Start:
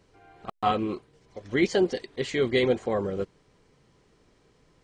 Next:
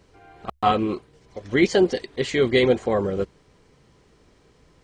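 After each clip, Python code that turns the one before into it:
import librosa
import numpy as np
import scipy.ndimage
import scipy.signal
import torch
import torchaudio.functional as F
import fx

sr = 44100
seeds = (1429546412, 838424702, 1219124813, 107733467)

y = fx.peak_eq(x, sr, hz=66.0, db=8.5, octaves=0.26)
y = y * librosa.db_to_amplitude(5.0)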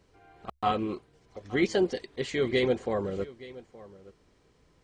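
y = x + 10.0 ** (-19.0 / 20.0) * np.pad(x, (int(871 * sr / 1000.0), 0))[:len(x)]
y = y * librosa.db_to_amplitude(-7.5)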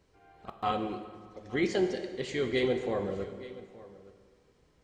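y = fx.rev_plate(x, sr, seeds[0], rt60_s=1.8, hf_ratio=0.75, predelay_ms=0, drr_db=6.0)
y = y * librosa.db_to_amplitude(-3.5)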